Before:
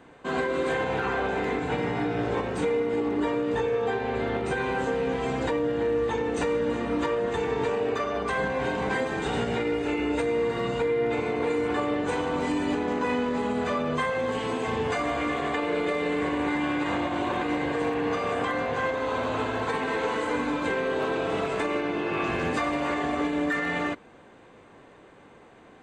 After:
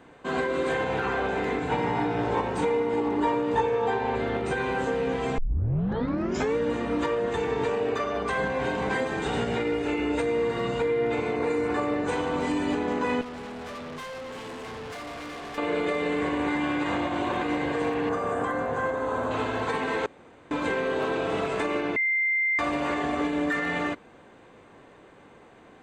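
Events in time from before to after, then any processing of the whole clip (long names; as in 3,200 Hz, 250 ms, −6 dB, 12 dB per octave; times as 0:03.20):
0:01.71–0:04.16: parametric band 910 Hz +10 dB 0.27 octaves
0:05.38: tape start 1.18 s
0:11.36–0:12.08: parametric band 3,200 Hz −11 dB 0.21 octaves
0:13.21–0:15.58: tube saturation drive 36 dB, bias 0.65
0:18.09–0:19.31: flat-topped bell 3,400 Hz −10 dB
0:20.06–0:20.51: fill with room tone
0:21.96–0:22.59: beep over 2,090 Hz −21.5 dBFS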